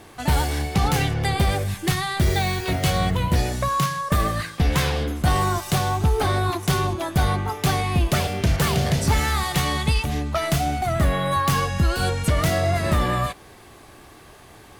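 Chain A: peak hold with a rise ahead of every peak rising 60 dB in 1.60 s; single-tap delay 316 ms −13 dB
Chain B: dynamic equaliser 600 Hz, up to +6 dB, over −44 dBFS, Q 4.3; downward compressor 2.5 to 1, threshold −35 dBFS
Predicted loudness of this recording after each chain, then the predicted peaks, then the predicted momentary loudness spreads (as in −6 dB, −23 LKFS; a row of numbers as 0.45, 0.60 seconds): −18.0, −33.0 LKFS; −3.5, −18.5 dBFS; 3, 3 LU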